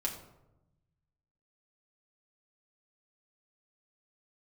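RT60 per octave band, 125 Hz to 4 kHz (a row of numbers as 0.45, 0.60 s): 1.8, 1.3, 1.0, 0.85, 0.60, 0.45 s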